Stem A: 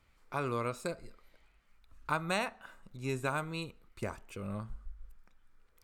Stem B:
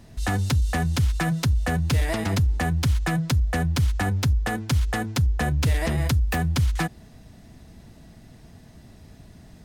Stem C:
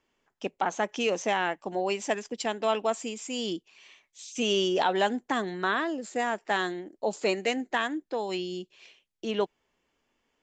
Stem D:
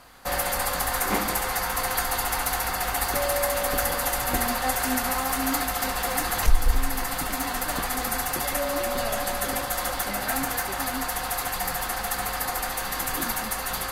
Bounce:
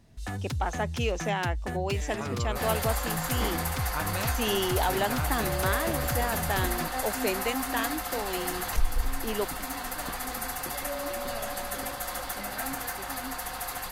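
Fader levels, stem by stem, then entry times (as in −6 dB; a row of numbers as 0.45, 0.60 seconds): −3.0, −10.5, −3.0, −6.5 decibels; 1.85, 0.00, 0.00, 2.30 seconds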